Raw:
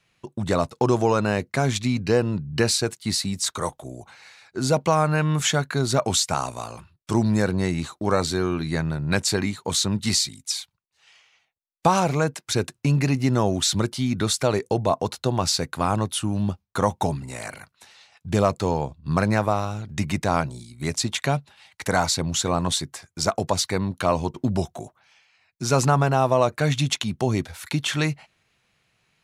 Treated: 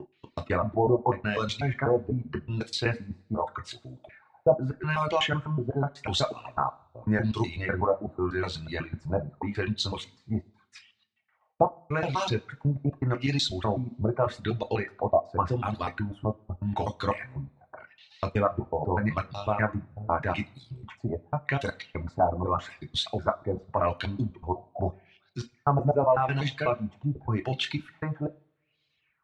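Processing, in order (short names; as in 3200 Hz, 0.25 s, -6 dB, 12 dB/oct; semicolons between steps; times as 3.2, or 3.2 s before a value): slices in reverse order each 0.124 s, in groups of 3; dynamic EQ 4400 Hz, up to -4 dB, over -37 dBFS, Q 1.5; LFO low-pass sine 0.84 Hz 650–4000 Hz; two-slope reverb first 0.48 s, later 1.8 s, from -26 dB, DRR 3.5 dB; reverb removal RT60 1.4 s; gain -7 dB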